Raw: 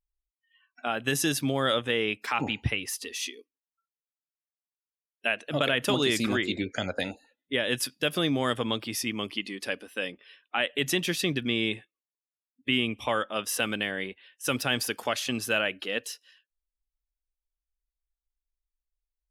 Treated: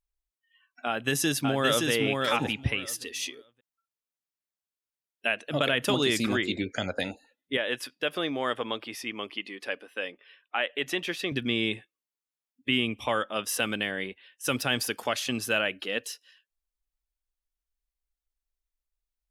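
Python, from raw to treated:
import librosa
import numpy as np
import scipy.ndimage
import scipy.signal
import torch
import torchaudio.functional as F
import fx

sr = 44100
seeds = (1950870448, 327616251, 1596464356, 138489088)

y = fx.echo_throw(x, sr, start_s=0.87, length_s=1.02, ms=570, feedback_pct=15, wet_db=-3.0)
y = fx.bass_treble(y, sr, bass_db=-14, treble_db=-11, at=(7.57, 11.32))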